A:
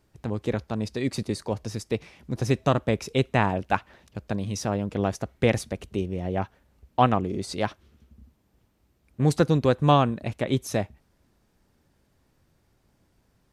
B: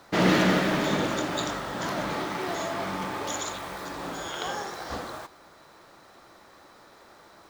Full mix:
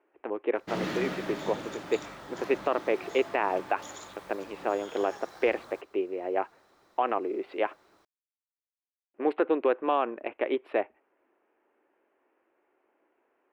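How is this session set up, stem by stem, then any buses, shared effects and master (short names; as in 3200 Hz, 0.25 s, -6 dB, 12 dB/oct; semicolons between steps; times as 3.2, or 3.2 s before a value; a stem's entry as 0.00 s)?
+2.0 dB, 0.00 s, muted 7.99–9.14, no send, Wiener smoothing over 9 samples; elliptic band-pass 340–2700 Hz, stop band 40 dB
-12.0 dB, 0.55 s, no send, dry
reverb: off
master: limiter -14.5 dBFS, peak gain reduction 11 dB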